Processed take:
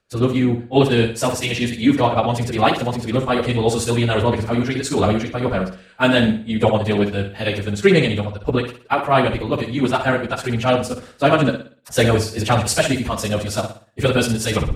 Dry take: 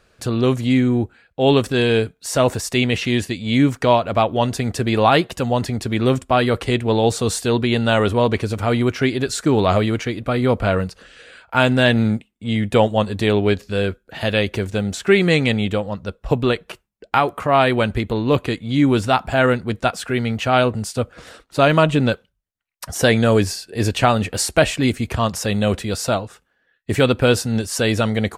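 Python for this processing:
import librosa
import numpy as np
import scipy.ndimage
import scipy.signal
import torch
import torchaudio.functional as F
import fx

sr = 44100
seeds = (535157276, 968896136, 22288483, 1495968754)

y = fx.tape_stop_end(x, sr, length_s=0.4)
y = fx.stretch_vocoder_free(y, sr, factor=0.52)
y = fx.room_flutter(y, sr, wall_m=10.1, rt60_s=0.47)
y = fx.band_widen(y, sr, depth_pct=40)
y = F.gain(torch.from_numpy(y), 2.5).numpy()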